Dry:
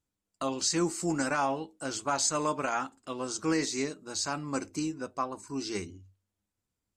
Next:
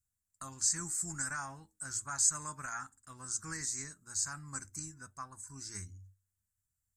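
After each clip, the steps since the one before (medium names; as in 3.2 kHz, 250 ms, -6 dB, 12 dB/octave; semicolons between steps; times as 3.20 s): FFT filter 110 Hz 0 dB, 290 Hz -21 dB, 510 Hz -27 dB, 1.7 kHz -3 dB, 2.9 kHz -25 dB, 7.5 kHz +4 dB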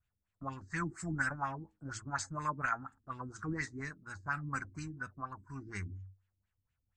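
LFO low-pass sine 4.2 Hz 270–3000 Hz; trim +5.5 dB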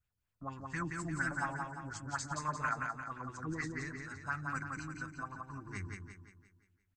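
feedback delay 174 ms, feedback 46%, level -3.5 dB; trim -2 dB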